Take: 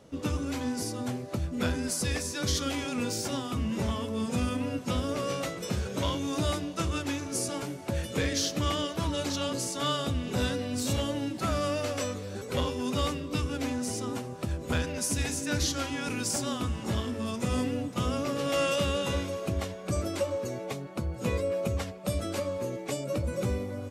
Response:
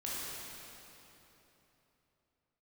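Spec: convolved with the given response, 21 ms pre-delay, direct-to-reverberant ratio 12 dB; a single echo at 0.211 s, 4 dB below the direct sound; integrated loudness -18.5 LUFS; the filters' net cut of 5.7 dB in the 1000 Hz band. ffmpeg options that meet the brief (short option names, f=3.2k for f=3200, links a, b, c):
-filter_complex "[0:a]equalizer=f=1k:t=o:g=-7.5,aecho=1:1:211:0.631,asplit=2[a][b];[1:a]atrim=start_sample=2205,adelay=21[c];[b][c]afir=irnorm=-1:irlink=0,volume=-15dB[d];[a][d]amix=inputs=2:normalize=0,volume=11.5dB"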